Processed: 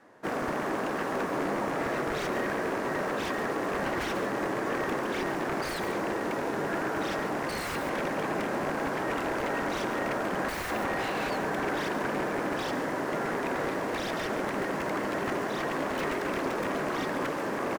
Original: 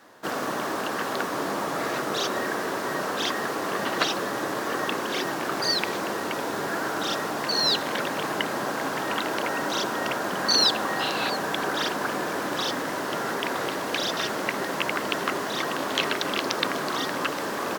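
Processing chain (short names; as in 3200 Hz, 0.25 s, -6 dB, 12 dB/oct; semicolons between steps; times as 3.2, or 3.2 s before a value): LPF 11000 Hz 12 dB/oct; in parallel at -11.5 dB: bit-crush 5-bit; on the sum: bell 1400 Hz -7 dB 1.5 oct; wrapped overs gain 20 dB; resonant high shelf 2700 Hz -9 dB, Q 1.5; outdoor echo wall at 24 m, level -12 dB; slew limiter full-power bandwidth 77 Hz; gain -1.5 dB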